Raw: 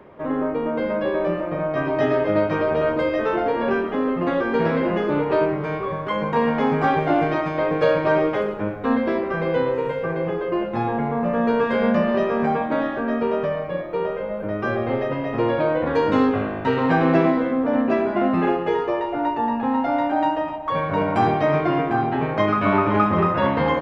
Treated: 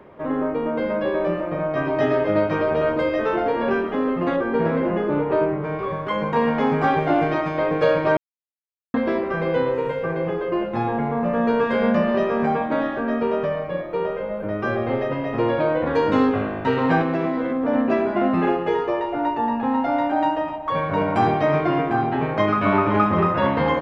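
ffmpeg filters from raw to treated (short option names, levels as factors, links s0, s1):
-filter_complex "[0:a]asettb=1/sr,asplit=3[s0][s1][s2];[s0]atrim=end=4.364[s3];[s1]atrim=start=4.36:end=5.79,asetpts=PTS-STARTPTS,afade=t=in:d=0.004:c=qsin,afade=t=out:st=1.426:d=0.004:c=qsin,lowpass=f=1600:p=1[s4];[s2]atrim=start=5.786[s5];[s3][s4]acrossfade=d=0.004:c1=hsin:c2=qsin[s6];[s6][s5]acrossfade=d=0.004:c1=qsin:c2=hsin,asettb=1/sr,asplit=3[s7][s8][s9];[s7]atrim=end=17.014[s10];[s8]atrim=start=17.01:end=17.63,asetpts=PTS-STARTPTS,afade=t=in:d=0.004:c=qsin,afade=t=out:st=0.616:d=0.004:c=qsin,acompressor=threshold=0.112:ratio=4:attack=3.2:release=140:knee=1:detection=peak[s11];[s9]atrim=start=17.626[s12];[s10][s11]acrossfade=d=0.004:c1=hsin:c2=qsin[s13];[s13][s12]acrossfade=d=0.004:c1=qsin:c2=hsin,asplit=3[s14][s15][s16];[s14]atrim=end=8.17,asetpts=PTS-STARTPTS,afade=t=out:st=8.166:d=0.004:c=hsin[s17];[s15]atrim=start=8.17:end=8.94,asetpts=PTS-STARTPTS,volume=0[s18];[s16]atrim=start=8.94,asetpts=PTS-STARTPTS,afade=t=in:d=0.004:c=hsin[s19];[s17][s18][s19]concat=n=3:v=0:a=1"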